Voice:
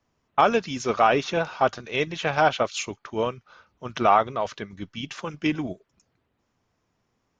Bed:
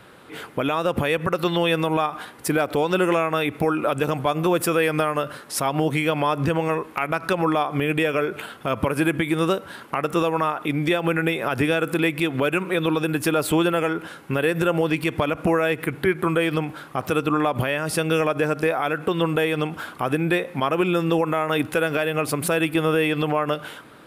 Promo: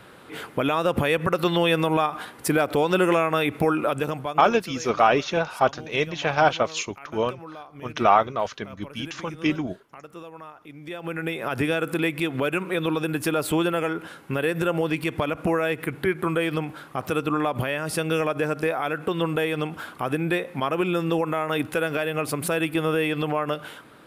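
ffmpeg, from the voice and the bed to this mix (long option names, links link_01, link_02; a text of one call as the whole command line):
ffmpeg -i stem1.wav -i stem2.wav -filter_complex "[0:a]adelay=4000,volume=1dB[link_01];[1:a]volume=16.5dB,afade=type=out:start_time=3.73:duration=0.81:silence=0.105925,afade=type=in:start_time=10.81:duration=0.75:silence=0.149624[link_02];[link_01][link_02]amix=inputs=2:normalize=0" out.wav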